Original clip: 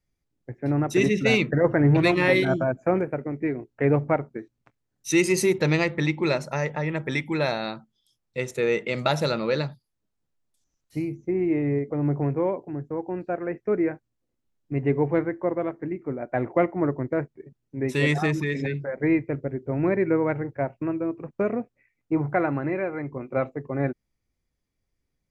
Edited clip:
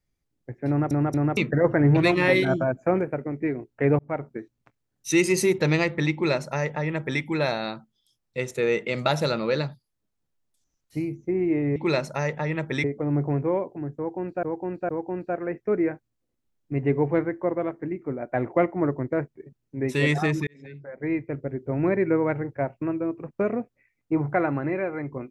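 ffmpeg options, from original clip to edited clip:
-filter_complex "[0:a]asplit=10[a][b][c][d][e][f][g][h][i][j];[a]atrim=end=0.912[k];[b]atrim=start=0.678:end=0.912[l];[c]atrim=start=0.678:end=0.912[m];[d]atrim=start=1.368:end=3.99,asetpts=PTS-STARTPTS,afade=t=out:st=2.618:d=0.004:c=hsin[n];[e]atrim=start=3.99:end=11.762,asetpts=PTS-STARTPTS,afade=t=in:d=0.3[o];[f]atrim=start=6.128:end=7.212[p];[g]atrim=start=11.758:end=13.352[q];[h]atrim=start=12.888:end=13.352[r];[i]atrim=start=12.888:end=18.47,asetpts=PTS-STARTPTS,afade=t=out:st=5.578:d=0.004:c=hsin[s];[j]atrim=start=18.47,asetpts=PTS-STARTPTS,afade=t=in:d=1.16[t];[k][l]acrossfade=d=0.004:c1=hsin:c2=hsin[u];[u][m]acrossfade=d=0.004:c1=hsin:c2=hsin[v];[n][o]concat=n=2:v=0:a=1[w];[v][w]acrossfade=d=0.004:c1=hsin:c2=hsin[x];[x][p]acrossfade=d=0.004:c1=hsin:c2=hsin[y];[y][q]acrossfade=d=0.004:c1=hsin:c2=hsin[z];[z][r]acrossfade=d=0.004:c1=hsin:c2=hsin[aa];[s][t]concat=n=2:v=0:a=1[ab];[aa][ab]acrossfade=d=0.004:c1=hsin:c2=hsin"

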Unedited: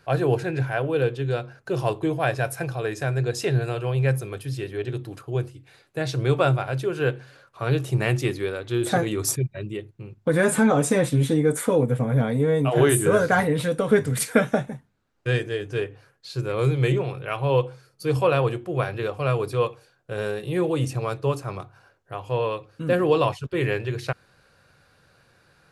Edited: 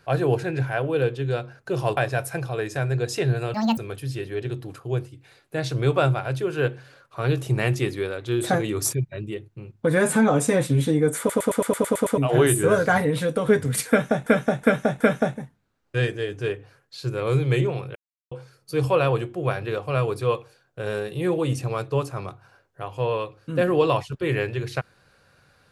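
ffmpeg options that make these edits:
-filter_complex "[0:a]asplit=18[a][b][c][d][e][f][g][h][i][j][k][l][m][n][o][p][q][r];[a]atrim=end=1.972[s];[b]atrim=start=2.228:end=3.804[t];[c]atrim=start=3.8:end=4.2,asetpts=PTS-STARTPTS,asetrate=75411,aresample=44100[u];[d]atrim=start=4.196:end=11.722[v];[e]atrim=start=11.608:end=11.722[w];[f]atrim=start=11.608:end=11.722[x];[g]atrim=start=11.608:end=11.722[y];[h]atrim=start=11.608:end=11.722[z];[i]atrim=start=11.608:end=11.722[aa];[j]atrim=start=11.608:end=11.722[ab];[k]atrim=start=11.608:end=11.722[ac];[l]atrim=start=11.608:end=11.722[ad];[m]atrim=start=12.598:end=14.692[ae];[n]atrim=start=14.318:end=14.692[af];[o]atrim=start=14.318:end=14.692[ag];[p]atrim=start=14.318:end=17.27,asetpts=PTS-STARTPTS,afade=t=out:st=2.948:d=0.004:c=hsin[ah];[q]atrim=start=17.27:end=17.63,asetpts=PTS-STARTPTS,volume=0[ai];[r]atrim=start=17.63,asetpts=PTS-STARTPTS,afade=t=in:d=0.004:c=hsin[aj];[s][t]acrossfade=d=0.004:c1=hsin:c2=hsin[ak];[ak][u]acrossfade=d=0.004:c1=hsin:c2=hsin[al];[al][v]acrossfade=d=0.004:c1=hsin:c2=hsin[am];[am][w]acrossfade=d=0.004:c1=hsin:c2=hsin[an];[an][x]acrossfade=d=0.004:c1=hsin:c2=hsin[ao];[ao][y]acrossfade=d=0.004:c1=hsin:c2=hsin[ap];[ap][z]acrossfade=d=0.004:c1=hsin:c2=hsin[aq];[aq][aa]acrossfade=d=0.004:c1=hsin:c2=hsin[ar];[ar][ab]acrossfade=d=0.004:c1=hsin:c2=hsin[as];[as][ac]acrossfade=d=0.004:c1=hsin:c2=hsin[at];[at][ad]acrossfade=d=0.004:c1=hsin:c2=hsin[au];[au][ae]acrossfade=d=0.004:c1=hsin:c2=hsin[av];[av][af]acrossfade=d=0.004:c1=hsin:c2=hsin[aw];[aw][ag]acrossfade=d=0.004:c1=hsin:c2=hsin[ax];[ah][ai][aj]concat=n=3:v=0:a=1[ay];[ax][ay]acrossfade=d=0.004:c1=hsin:c2=hsin"

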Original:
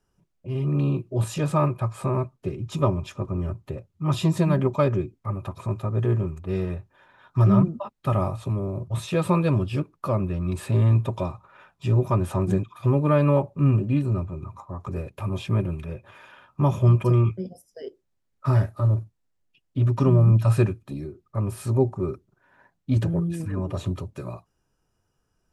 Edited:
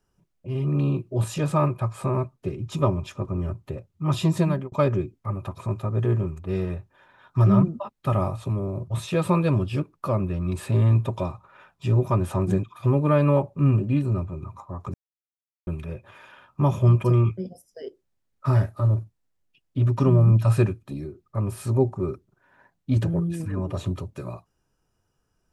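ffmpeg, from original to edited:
-filter_complex "[0:a]asplit=4[a][b][c][d];[a]atrim=end=4.72,asetpts=PTS-STARTPTS,afade=t=out:st=4.44:d=0.28[e];[b]atrim=start=4.72:end=14.94,asetpts=PTS-STARTPTS,afade=t=in:d=0.004:c=hsin,afade=t=out:st=10.216:d=0.004:c=hsin[f];[c]atrim=start=14.94:end=15.67,asetpts=PTS-STARTPTS,volume=0[g];[d]atrim=start=15.67,asetpts=PTS-STARTPTS,afade=t=in:d=0.004:c=hsin[h];[e][f][g][h]concat=n=4:v=0:a=1"

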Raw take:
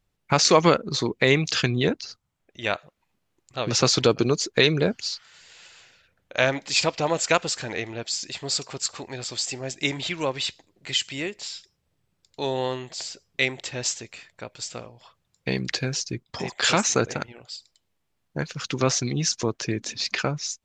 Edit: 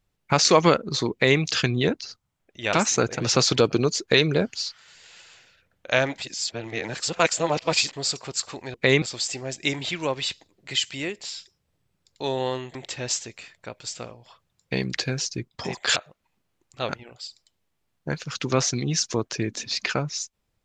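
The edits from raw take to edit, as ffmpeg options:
-filter_complex "[0:a]asplit=10[a][b][c][d][e][f][g][h][i][j];[a]atrim=end=2.732[k];[b]atrim=start=16.708:end=17.182[l];[c]atrim=start=3.658:end=6.642[m];[d]atrim=start=6.638:end=8.392,asetpts=PTS-STARTPTS,areverse[n];[e]atrim=start=8.388:end=9.202[o];[f]atrim=start=1.118:end=1.402[p];[g]atrim=start=9.198:end=12.932[q];[h]atrim=start=13.498:end=16.712[r];[i]atrim=start=2.728:end=3.662[s];[j]atrim=start=17.178[t];[k][l]acrossfade=d=0.004:c1=hsin:c2=hsin[u];[u][m]acrossfade=d=0.004:c1=hsin:c2=hsin[v];[v][n]acrossfade=d=0.004:c1=hsin:c2=hsin[w];[w][o]acrossfade=d=0.004:c1=hsin:c2=hsin[x];[x][p]acrossfade=d=0.004:c1=hsin:c2=hsin[y];[y][q]acrossfade=d=0.004:c1=hsin:c2=hsin[z];[z][r]acrossfade=d=0.004:c1=hsin:c2=hsin[aa];[aa][s]acrossfade=d=0.004:c1=hsin:c2=hsin[ab];[ab][t]acrossfade=d=0.004:c1=hsin:c2=hsin"

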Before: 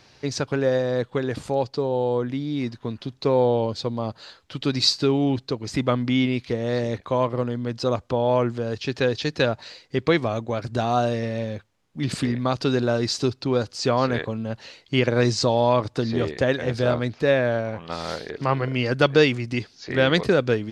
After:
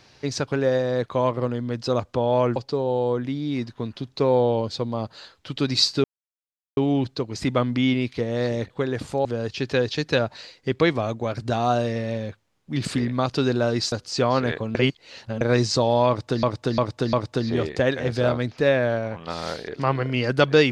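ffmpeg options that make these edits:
-filter_complex "[0:a]asplit=12[a][b][c][d][e][f][g][h][i][j][k][l];[a]atrim=end=1.062[m];[b]atrim=start=7.018:end=8.522[n];[c]atrim=start=1.608:end=5.09,asetpts=PTS-STARTPTS,afade=t=out:st=3.478:d=0.004:c=hsin,apad=pad_dur=0.73[o];[d]atrim=start=5.09:end=7.022,asetpts=PTS-STARTPTS,afade=t=in:d=0.004:c=hsin[p];[e]atrim=start=1.058:end=1.612[q];[f]atrim=start=8.518:end=13.192[r];[g]atrim=start=13.588:end=14.422[s];[h]atrim=start=14.418:end=15.082,asetpts=PTS-STARTPTS,areverse[t];[i]atrim=start=15.078:end=16.102[u];[j]atrim=start=15.748:end=16.102[v];[k]atrim=start=15.748:end=16.102[w];[l]atrim=start=15.748[x];[m][n]acrossfade=d=0.004:c1=hsin:c2=hsin[y];[o][p]concat=n=2:v=0:a=1[z];[y][z]acrossfade=d=0.004:c1=hsin:c2=hsin[aa];[aa][q]acrossfade=d=0.004:c1=hsin:c2=hsin[ab];[ab][r]acrossfade=d=0.004:c1=hsin:c2=hsin[ac];[ac][s]acrossfade=d=0.004:c1=hsin:c2=hsin[ad];[ad][t]acrossfade=d=0.004:c1=hsin:c2=hsin[ae];[ae][u]acrossfade=d=0.004:c1=hsin:c2=hsin[af];[af][v]acrossfade=d=0.004:c1=hsin:c2=hsin[ag];[ag][w]acrossfade=d=0.004:c1=hsin:c2=hsin[ah];[ah][x]acrossfade=d=0.004:c1=hsin:c2=hsin"

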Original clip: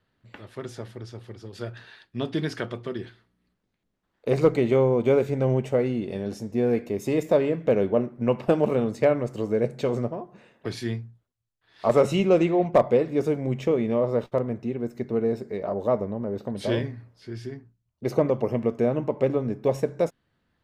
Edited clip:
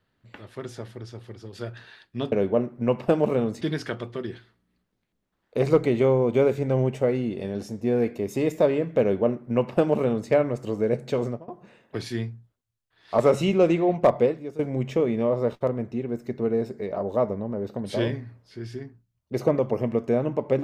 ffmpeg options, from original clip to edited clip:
-filter_complex "[0:a]asplit=5[a][b][c][d][e];[a]atrim=end=2.322[f];[b]atrim=start=7.718:end=9.012[g];[c]atrim=start=2.318:end=10.19,asetpts=PTS-STARTPTS,afade=t=out:st=7.622:d=0.25:silence=0.0794328[h];[d]atrim=start=10.19:end=13.3,asetpts=PTS-STARTPTS,afade=t=in:d=0.004:c=hsin:silence=0.0794328,afade=t=out:st=2.76:d=0.35:c=qua:silence=0.177828[i];[e]atrim=start=13.3,asetpts=PTS-STARTPTS,afade=t=in:d=0.004:c=hsin:silence=0.177828[j];[f][g]acrossfade=d=0.004:c1=hsin:c2=hsin[k];[h][i][j]concat=n=3:v=0:a=1[l];[k][l]acrossfade=d=0.004:c1=hsin:c2=hsin"

